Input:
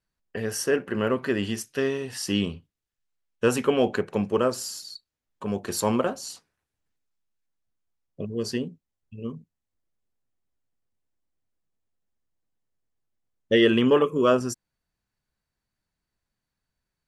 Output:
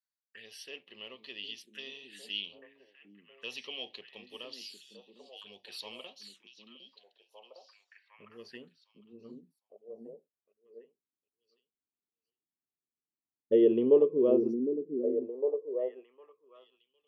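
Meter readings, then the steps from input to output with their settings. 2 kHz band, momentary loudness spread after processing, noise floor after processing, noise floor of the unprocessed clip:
-15.0 dB, 25 LU, under -85 dBFS, -85 dBFS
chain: touch-sensitive phaser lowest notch 520 Hz, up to 1.5 kHz, full sweep at -25 dBFS; repeats whose band climbs or falls 757 ms, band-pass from 240 Hz, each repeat 1.4 oct, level -1.5 dB; band-pass sweep 3.5 kHz -> 420 Hz, 7.07–10.69 s

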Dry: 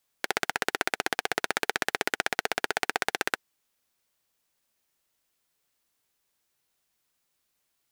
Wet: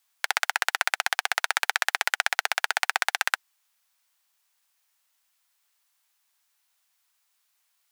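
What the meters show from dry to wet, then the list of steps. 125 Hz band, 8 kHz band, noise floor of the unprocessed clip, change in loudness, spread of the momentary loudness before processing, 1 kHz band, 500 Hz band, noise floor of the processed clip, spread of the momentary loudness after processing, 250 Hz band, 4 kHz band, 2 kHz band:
under -40 dB, +4.5 dB, -77 dBFS, +4.0 dB, 2 LU, +3.0 dB, -6.5 dB, -73 dBFS, 2 LU, under -25 dB, +4.5 dB, +4.5 dB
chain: high-pass 780 Hz 24 dB/octave; trim +4.5 dB

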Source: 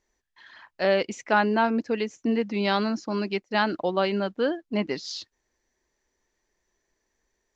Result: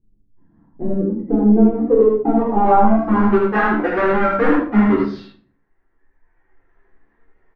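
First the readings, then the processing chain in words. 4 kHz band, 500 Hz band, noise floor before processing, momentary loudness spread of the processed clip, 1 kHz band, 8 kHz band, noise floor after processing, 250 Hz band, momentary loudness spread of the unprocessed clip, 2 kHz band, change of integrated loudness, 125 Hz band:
under -10 dB, +9.0 dB, -78 dBFS, 8 LU, +9.5 dB, no reading, -63 dBFS, +12.0 dB, 6 LU, +5.0 dB, +10.0 dB, +12.0 dB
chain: square wave that keeps the level; reverb removal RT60 1.6 s; treble shelf 2.8 kHz -10 dB; hum notches 50/100/150/200 Hz; compression, threshold -26 dBFS, peak gain reduction 11 dB; low-pass sweep 170 Hz -> 1.7 kHz, 0.27–3.59 s; flange 0.64 Hz, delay 8.8 ms, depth 5.6 ms, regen +36%; on a send: delay 78 ms -3.5 dB; on the sum: simulated room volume 340 m³, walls furnished, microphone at 3.8 m; trim +7 dB

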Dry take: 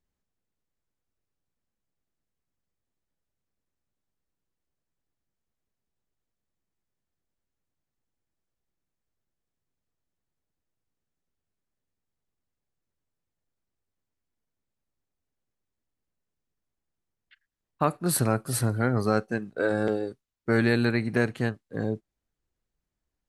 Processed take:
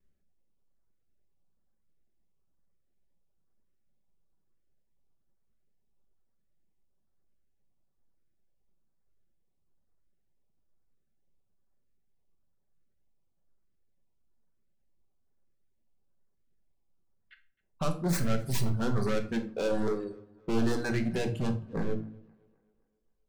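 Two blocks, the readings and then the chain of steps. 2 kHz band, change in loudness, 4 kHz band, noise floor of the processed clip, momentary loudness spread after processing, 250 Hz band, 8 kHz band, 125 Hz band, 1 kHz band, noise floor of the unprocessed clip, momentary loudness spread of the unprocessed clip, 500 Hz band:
-9.0 dB, -5.0 dB, -3.0 dB, -73 dBFS, 7 LU, -4.0 dB, -8.5 dB, -4.0 dB, -7.0 dB, under -85 dBFS, 9 LU, -5.0 dB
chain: tracing distortion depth 0.21 ms; hum notches 60/120/180/240/300/360 Hz; reverb removal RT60 1.6 s; treble shelf 2.1 kHz -11 dB; vibrato 0.73 Hz 22 cents; in parallel at +1 dB: compression, threshold -33 dBFS, peak gain reduction 13 dB; on the sum: overload inside the chain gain 28 dB; LFO notch saw up 1.1 Hz 770–3200 Hz; tape echo 262 ms, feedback 48%, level -24 dB, low-pass 5.7 kHz; dynamic bell 7.1 kHz, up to +5 dB, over -55 dBFS, Q 0.75; simulated room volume 480 m³, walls furnished, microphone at 1.1 m

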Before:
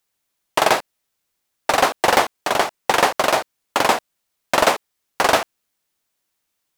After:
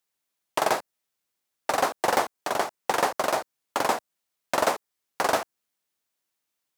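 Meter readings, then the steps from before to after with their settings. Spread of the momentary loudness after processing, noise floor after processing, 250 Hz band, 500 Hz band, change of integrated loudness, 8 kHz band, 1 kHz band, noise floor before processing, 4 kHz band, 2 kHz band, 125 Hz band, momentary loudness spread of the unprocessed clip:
8 LU, -82 dBFS, -7.0 dB, -7.0 dB, -8.0 dB, -7.5 dB, -7.5 dB, -76 dBFS, -11.0 dB, -9.5 dB, -8.5 dB, 8 LU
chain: high-pass 110 Hz 6 dB/octave; dynamic bell 2.9 kHz, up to -6 dB, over -33 dBFS, Q 1; trim -6.5 dB

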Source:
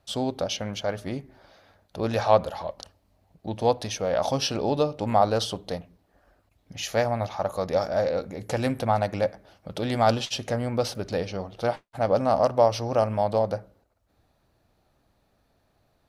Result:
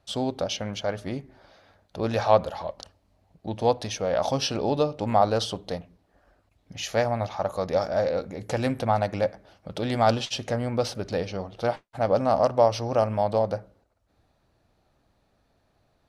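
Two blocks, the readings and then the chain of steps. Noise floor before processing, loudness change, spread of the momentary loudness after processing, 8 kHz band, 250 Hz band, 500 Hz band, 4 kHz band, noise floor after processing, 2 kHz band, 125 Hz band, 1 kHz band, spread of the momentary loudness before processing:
-69 dBFS, 0.0 dB, 13 LU, -1.0 dB, 0.0 dB, 0.0 dB, -0.5 dB, -69 dBFS, 0.0 dB, 0.0 dB, 0.0 dB, 13 LU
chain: Bessel low-pass 9.5 kHz, order 2

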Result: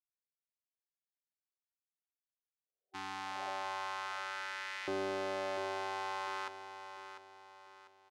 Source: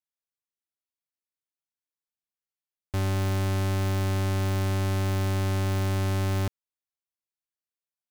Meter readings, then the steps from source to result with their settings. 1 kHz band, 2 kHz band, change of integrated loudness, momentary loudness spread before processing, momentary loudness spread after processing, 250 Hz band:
-2.0 dB, -3.0 dB, -12.5 dB, 2 LU, 17 LU, -17.0 dB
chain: expander -15 dBFS; low-pass 5.3 kHz 12 dB/octave; spectral replace 2.52–3.46 s, 370–770 Hz both; LFO high-pass saw up 0.41 Hz 370–2000 Hz; on a send: feedback delay 697 ms, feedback 39%, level -10 dB; on the sum: trim +14 dB

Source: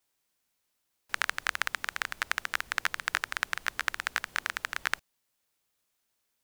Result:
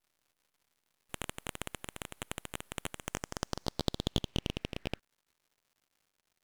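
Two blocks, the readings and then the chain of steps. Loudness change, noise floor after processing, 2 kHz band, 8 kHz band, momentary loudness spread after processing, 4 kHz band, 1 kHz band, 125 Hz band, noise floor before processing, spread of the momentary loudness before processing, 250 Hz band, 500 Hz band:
-7.5 dB, -84 dBFS, -17.0 dB, -3.5 dB, 9 LU, -3.5 dB, -9.5 dB, +17.0 dB, -79 dBFS, 3 LU, +15.5 dB, +6.5 dB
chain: band-pass sweep 5.4 kHz -> 310 Hz, 2.90–5.99 s; full-wave rectifier; crackle 210 per s -62 dBFS; trim +2.5 dB

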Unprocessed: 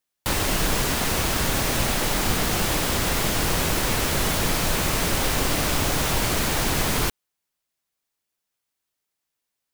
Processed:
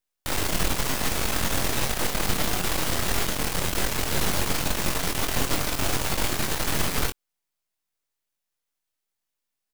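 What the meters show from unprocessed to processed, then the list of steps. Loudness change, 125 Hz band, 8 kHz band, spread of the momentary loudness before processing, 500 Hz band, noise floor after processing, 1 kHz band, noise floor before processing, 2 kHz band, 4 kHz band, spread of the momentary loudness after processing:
-3.5 dB, -4.5 dB, -3.0 dB, 0 LU, -4.0 dB, -83 dBFS, -3.5 dB, -82 dBFS, -3.5 dB, -3.0 dB, 1 LU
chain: half-wave rectifier; doubling 22 ms -6.5 dB

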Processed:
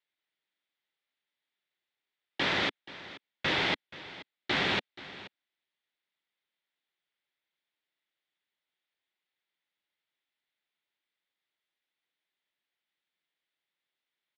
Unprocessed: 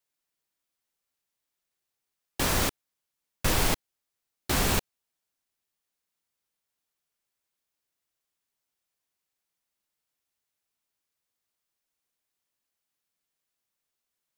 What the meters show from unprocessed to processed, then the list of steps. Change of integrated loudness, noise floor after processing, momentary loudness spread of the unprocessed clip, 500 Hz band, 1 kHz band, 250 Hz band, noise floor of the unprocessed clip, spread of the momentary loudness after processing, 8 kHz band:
-2.5 dB, under -85 dBFS, 8 LU, -3.0 dB, -2.5 dB, -4.0 dB, -85 dBFS, 18 LU, -21.0 dB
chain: cabinet simulation 210–3900 Hz, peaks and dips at 240 Hz -5 dB, 470 Hz -4 dB, 690 Hz -3 dB, 1.1 kHz -5 dB, 2 kHz +6 dB, 3.5 kHz +6 dB; on a send: delay 479 ms -17 dB

